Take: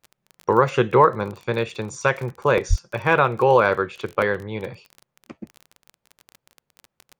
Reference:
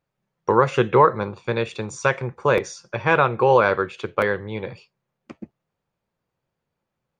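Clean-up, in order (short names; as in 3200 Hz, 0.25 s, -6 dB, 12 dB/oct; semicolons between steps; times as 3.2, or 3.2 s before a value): de-click; de-plosive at 2.69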